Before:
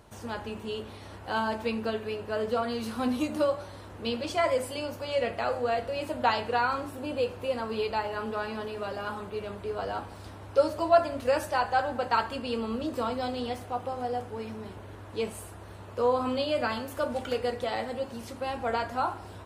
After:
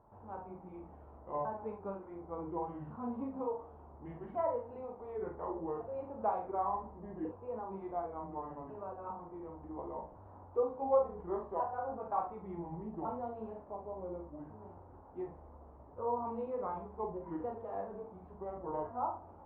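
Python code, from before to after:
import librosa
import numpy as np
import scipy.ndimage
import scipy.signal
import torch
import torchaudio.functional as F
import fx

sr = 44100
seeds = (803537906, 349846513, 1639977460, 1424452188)

y = fx.pitch_ramps(x, sr, semitones=-7.5, every_ms=1450)
y = fx.ladder_lowpass(y, sr, hz=1100.0, resonance_pct=50)
y = fx.room_early_taps(y, sr, ms=(41, 67), db=(-5.0, -11.5))
y = F.gain(torch.from_numpy(y), -3.0).numpy()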